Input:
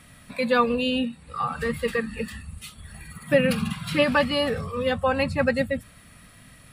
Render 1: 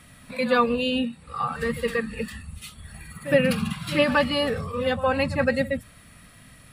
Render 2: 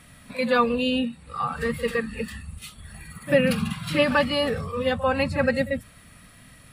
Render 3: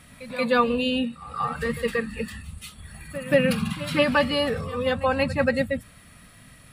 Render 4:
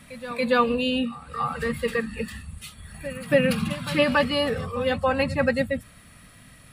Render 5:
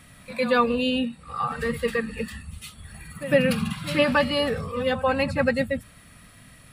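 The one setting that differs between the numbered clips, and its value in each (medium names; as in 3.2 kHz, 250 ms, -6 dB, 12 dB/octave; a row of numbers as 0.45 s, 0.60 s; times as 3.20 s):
pre-echo, time: 65 ms, 43 ms, 181 ms, 282 ms, 106 ms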